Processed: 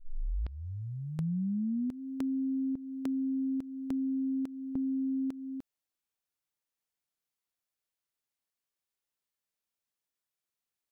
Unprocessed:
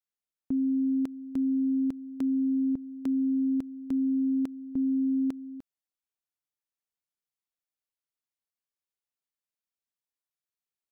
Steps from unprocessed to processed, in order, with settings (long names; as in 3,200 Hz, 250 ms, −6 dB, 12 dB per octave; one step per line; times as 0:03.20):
turntable start at the beginning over 2.00 s
downward compressor 2.5 to 1, threshold −37 dBFS, peak gain reduction 8 dB
level +2.5 dB